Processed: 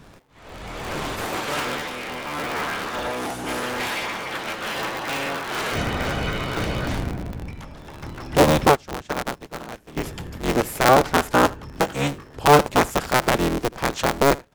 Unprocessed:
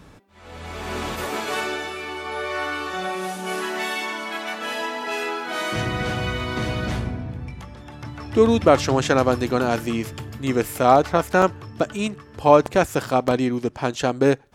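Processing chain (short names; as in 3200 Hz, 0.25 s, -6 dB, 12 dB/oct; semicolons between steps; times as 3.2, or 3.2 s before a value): cycle switcher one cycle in 3, inverted; 11.7–12.28 doubler 21 ms -6.5 dB; echo 77 ms -22 dB; 8.67–9.97 upward expander 2.5:1, over -27 dBFS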